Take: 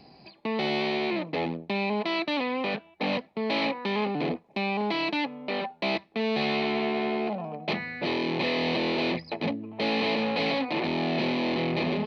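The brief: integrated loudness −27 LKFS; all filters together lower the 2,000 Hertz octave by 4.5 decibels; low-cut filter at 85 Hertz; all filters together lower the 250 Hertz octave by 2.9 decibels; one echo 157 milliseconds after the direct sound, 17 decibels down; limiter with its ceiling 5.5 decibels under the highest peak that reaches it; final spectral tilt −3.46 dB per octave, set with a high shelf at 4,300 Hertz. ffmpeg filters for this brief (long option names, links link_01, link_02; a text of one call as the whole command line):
ffmpeg -i in.wav -af "highpass=85,equalizer=frequency=250:width_type=o:gain=-3.5,equalizer=frequency=2000:width_type=o:gain=-4,highshelf=frequency=4300:gain=-6,alimiter=limit=-24dB:level=0:latency=1,aecho=1:1:157:0.141,volume=6dB" out.wav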